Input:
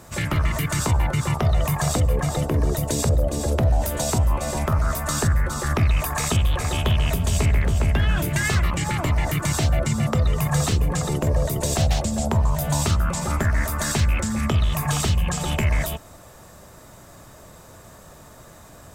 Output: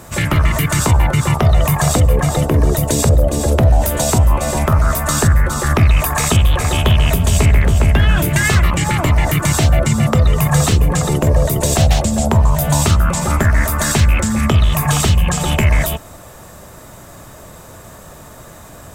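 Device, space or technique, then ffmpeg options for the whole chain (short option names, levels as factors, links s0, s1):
exciter from parts: -filter_complex "[0:a]asplit=2[s0][s1];[s1]highpass=2000,asoftclip=type=tanh:threshold=0.1,highpass=f=3900:w=0.5412,highpass=f=3900:w=1.3066,volume=0.251[s2];[s0][s2]amix=inputs=2:normalize=0,volume=2.51"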